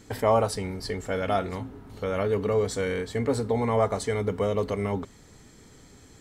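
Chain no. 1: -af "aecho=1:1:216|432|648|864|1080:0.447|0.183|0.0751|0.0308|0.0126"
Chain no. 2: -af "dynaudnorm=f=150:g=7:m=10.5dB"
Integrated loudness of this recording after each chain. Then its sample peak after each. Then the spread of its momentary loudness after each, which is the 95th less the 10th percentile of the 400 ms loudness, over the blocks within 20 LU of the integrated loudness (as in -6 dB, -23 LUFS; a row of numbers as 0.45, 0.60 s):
-26.5, -19.0 LUFS; -9.5, -2.5 dBFS; 10, 9 LU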